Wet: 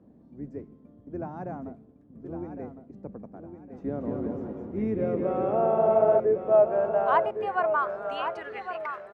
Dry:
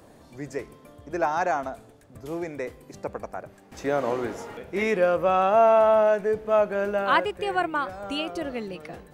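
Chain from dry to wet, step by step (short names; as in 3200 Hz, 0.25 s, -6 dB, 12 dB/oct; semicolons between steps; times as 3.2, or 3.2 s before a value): octaver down 2 oct, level -1 dB; 3.8–6.2 bouncing-ball echo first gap 0.21 s, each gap 0.8×, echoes 5; band-pass sweep 220 Hz -> 1900 Hz, 4.77–8.77; feedback echo 1.108 s, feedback 30%, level -8.5 dB; gain +3 dB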